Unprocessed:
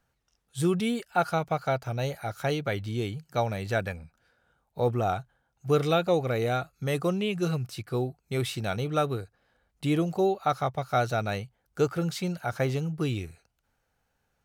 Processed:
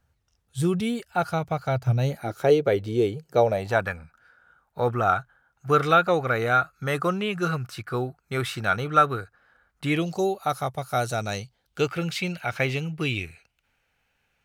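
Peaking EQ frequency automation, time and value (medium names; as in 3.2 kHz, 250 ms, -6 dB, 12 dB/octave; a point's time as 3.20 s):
peaking EQ +14 dB 1 oct
1.68 s 81 Hz
2.45 s 440 Hz
3.40 s 440 Hz
3.92 s 1.4 kHz
9.85 s 1.4 kHz
10.30 s 11 kHz
10.97 s 11 kHz
11.90 s 2.5 kHz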